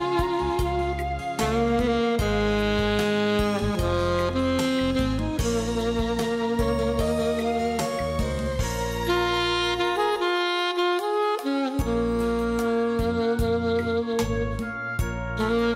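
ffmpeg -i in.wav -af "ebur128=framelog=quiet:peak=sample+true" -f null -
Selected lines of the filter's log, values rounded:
Integrated loudness:
  I:         -24.7 LUFS
  Threshold: -34.7 LUFS
Loudness range:
  LRA:         1.8 LU
  Threshold: -44.5 LUFS
  LRA low:   -25.4 LUFS
  LRA high:  -23.6 LUFS
Sample peak:
  Peak:      -13.1 dBFS
True peak:
  Peak:      -13.1 dBFS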